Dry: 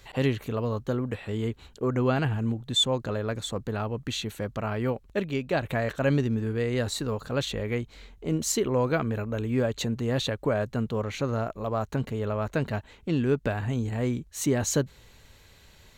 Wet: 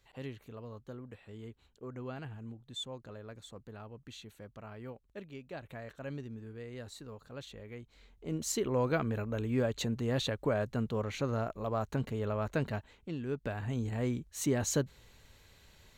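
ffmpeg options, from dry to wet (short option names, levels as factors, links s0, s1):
-af "volume=1.5,afade=t=in:st=7.76:d=1.11:silence=0.237137,afade=t=out:st=12.63:d=0.56:silence=0.354813,afade=t=in:st=13.19:d=0.67:silence=0.375837"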